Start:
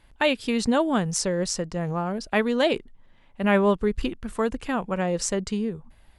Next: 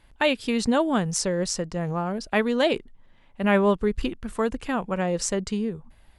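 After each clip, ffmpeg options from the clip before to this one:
ffmpeg -i in.wav -af anull out.wav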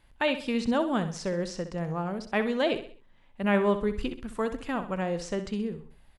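ffmpeg -i in.wav -filter_complex "[0:a]acrossover=split=4500[link_01][link_02];[link_02]acompressor=threshold=-45dB:ratio=4:attack=1:release=60[link_03];[link_01][link_03]amix=inputs=2:normalize=0,aecho=1:1:64|128|192|256:0.282|0.113|0.0451|0.018,volume=-4.5dB" out.wav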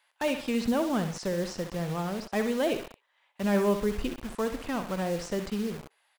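ffmpeg -i in.wav -filter_complex "[0:a]acrossover=split=650[link_01][link_02];[link_01]acrusher=bits=6:mix=0:aa=0.000001[link_03];[link_02]asoftclip=type=tanh:threshold=-29.5dB[link_04];[link_03][link_04]amix=inputs=2:normalize=0" out.wav

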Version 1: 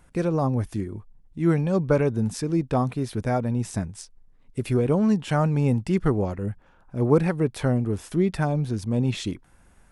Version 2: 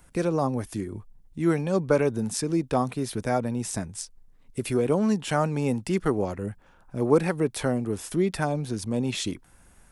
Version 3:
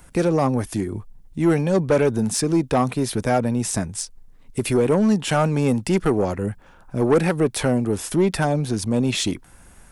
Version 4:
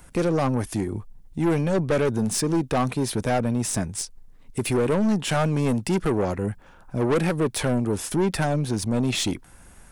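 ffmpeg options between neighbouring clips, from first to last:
ffmpeg -i in.wav -filter_complex "[0:a]highshelf=frequency=5300:gain=8.5,acrossover=split=210|3600[link_01][link_02][link_03];[link_01]acompressor=threshold=-34dB:ratio=6[link_04];[link_04][link_02][link_03]amix=inputs=3:normalize=0" out.wav
ffmpeg -i in.wav -af "asoftclip=type=tanh:threshold=-18dB,volume=7.5dB" out.wav
ffmpeg -i in.wav -af "aeval=exprs='(tanh(7.08*val(0)+0.3)-tanh(0.3))/7.08':channel_layout=same" out.wav

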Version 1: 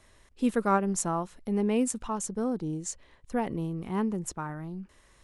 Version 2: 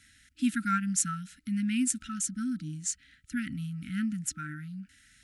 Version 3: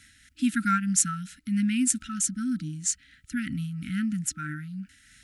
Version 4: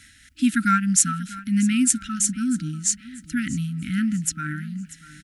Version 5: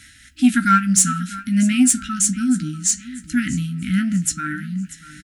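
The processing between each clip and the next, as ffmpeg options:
ffmpeg -i in.wav -af "highpass=51,afftfilt=real='re*(1-between(b*sr/4096,310,1300))':imag='im*(1-between(b*sr/4096,310,1300))':win_size=4096:overlap=0.75,lowshelf=frequency=410:gain=-6.5,volume=4dB" out.wav
ffmpeg -i in.wav -af "tremolo=f=3.1:d=0.32,volume=5.5dB" out.wav
ffmpeg -i in.wav -af "aecho=1:1:640|1280|1920:0.126|0.0466|0.0172,volume=5dB" out.wav
ffmpeg -i in.wav -filter_complex "[0:a]flanger=delay=9.7:depth=3.6:regen=-77:speed=0.45:shape=sinusoidal,asoftclip=type=tanh:threshold=-13.5dB,asplit=2[link_01][link_02];[link_02]adelay=16,volume=-9dB[link_03];[link_01][link_03]amix=inputs=2:normalize=0,volume=8.5dB" out.wav

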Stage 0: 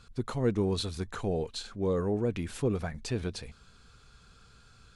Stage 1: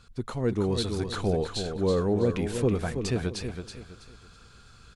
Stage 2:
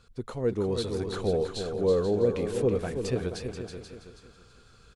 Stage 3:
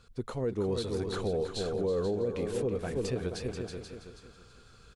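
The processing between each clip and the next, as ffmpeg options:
ffmpeg -i in.wav -af "aecho=1:1:326|652|978|1304:0.422|0.131|0.0405|0.0126,dynaudnorm=framelen=220:gausssize=7:maxgain=4dB" out.wav
ffmpeg -i in.wav -filter_complex "[0:a]equalizer=frequency=480:width_type=o:width=0.69:gain=7,asplit=2[link_01][link_02];[link_02]aecho=0:1:483:0.316[link_03];[link_01][link_03]amix=inputs=2:normalize=0,volume=-4.5dB" out.wav
ffmpeg -i in.wav -af "alimiter=limit=-23dB:level=0:latency=1:release=211" out.wav

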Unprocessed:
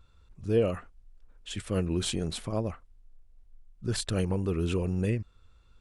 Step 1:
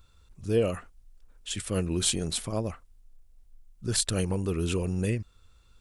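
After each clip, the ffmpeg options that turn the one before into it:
ffmpeg -i in.wav -af "highshelf=frequency=4700:gain=12" out.wav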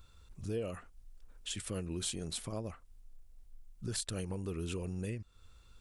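ffmpeg -i in.wav -af "acompressor=threshold=-40dB:ratio=2.5" out.wav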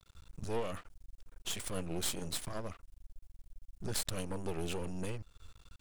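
ffmpeg -i in.wav -af "aeval=exprs='max(val(0),0)':channel_layout=same,volume=6dB" out.wav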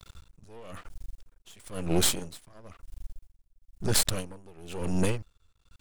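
ffmpeg -i in.wav -filter_complex "[0:a]asplit=2[link_01][link_02];[link_02]alimiter=level_in=1dB:limit=-24dB:level=0:latency=1:release=142,volume=-1dB,volume=-1dB[link_03];[link_01][link_03]amix=inputs=2:normalize=0,aeval=exprs='val(0)*pow(10,-27*(0.5-0.5*cos(2*PI*1*n/s))/20)':channel_layout=same,volume=8.5dB" out.wav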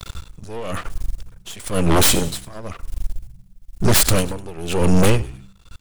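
ffmpeg -i in.wav -filter_complex "[0:a]asplit=4[link_01][link_02][link_03][link_04];[link_02]adelay=100,afreqshift=-65,volume=-22dB[link_05];[link_03]adelay=200,afreqshift=-130,volume=-30.2dB[link_06];[link_04]adelay=300,afreqshift=-195,volume=-38.4dB[link_07];[link_01][link_05][link_06][link_07]amix=inputs=4:normalize=0,aeval=exprs='0.473*sin(PI/2*4.47*val(0)/0.473)':channel_layout=same" out.wav

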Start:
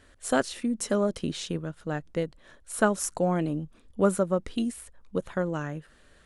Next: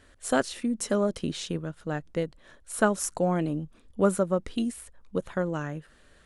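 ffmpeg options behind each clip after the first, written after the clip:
ffmpeg -i in.wav -af anull out.wav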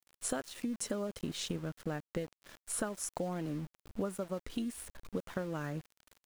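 ffmpeg -i in.wav -af "acompressor=threshold=-34dB:ratio=12,aeval=exprs='val(0)*gte(abs(val(0)),0.00376)':channel_layout=same,volume=1dB" out.wav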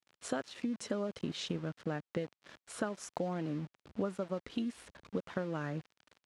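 ffmpeg -i in.wav -af "highpass=100,lowpass=4900,volume=1dB" out.wav

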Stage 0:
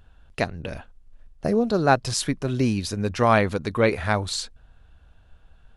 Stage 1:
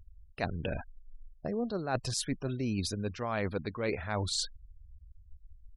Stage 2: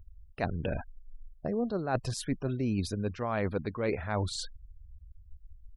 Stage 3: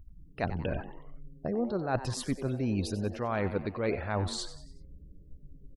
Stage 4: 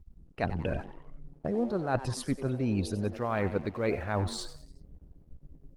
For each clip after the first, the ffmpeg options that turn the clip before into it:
ffmpeg -i in.wav -af "afftfilt=real='re*gte(hypot(re,im),0.0141)':imag='im*gte(hypot(re,im),0.0141)':win_size=1024:overlap=0.75,areverse,acompressor=threshold=-29dB:ratio=16,areverse" out.wav
ffmpeg -i in.wav -af "equalizer=frequency=5900:width_type=o:width=2.5:gain=-8,volume=2.5dB" out.wav
ffmpeg -i in.wav -filter_complex "[0:a]aeval=exprs='val(0)+0.000501*(sin(2*PI*60*n/s)+sin(2*PI*2*60*n/s)/2+sin(2*PI*3*60*n/s)/3+sin(2*PI*4*60*n/s)/4+sin(2*PI*5*60*n/s)/5)':channel_layout=same,asplit=5[link_01][link_02][link_03][link_04][link_05];[link_02]adelay=93,afreqshift=130,volume=-13.5dB[link_06];[link_03]adelay=186,afreqshift=260,volume=-20.2dB[link_07];[link_04]adelay=279,afreqshift=390,volume=-27dB[link_08];[link_05]adelay=372,afreqshift=520,volume=-33.7dB[link_09];[link_01][link_06][link_07][link_08][link_09]amix=inputs=5:normalize=0" out.wav
ffmpeg -i in.wav -af "aeval=exprs='sgn(val(0))*max(abs(val(0))-0.00178,0)':channel_layout=same,volume=1.5dB" -ar 48000 -c:a libopus -b:a 32k out.opus

